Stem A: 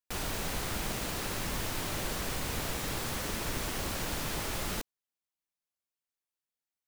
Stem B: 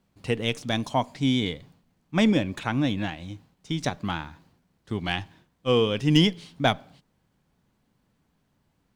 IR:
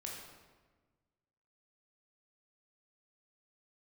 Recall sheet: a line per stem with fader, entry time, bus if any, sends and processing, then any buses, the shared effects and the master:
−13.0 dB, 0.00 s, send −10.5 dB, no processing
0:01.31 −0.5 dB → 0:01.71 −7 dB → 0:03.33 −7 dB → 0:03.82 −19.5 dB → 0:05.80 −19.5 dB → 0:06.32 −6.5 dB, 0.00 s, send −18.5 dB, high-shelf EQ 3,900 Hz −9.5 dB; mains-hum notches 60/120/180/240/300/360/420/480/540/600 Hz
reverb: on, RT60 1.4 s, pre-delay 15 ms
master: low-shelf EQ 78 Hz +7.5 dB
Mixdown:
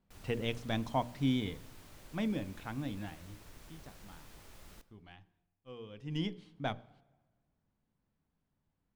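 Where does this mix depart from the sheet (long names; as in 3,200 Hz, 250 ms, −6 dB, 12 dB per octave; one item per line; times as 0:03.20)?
stem A −13.0 dB → −23.5 dB
stem B −0.5 dB → −8.0 dB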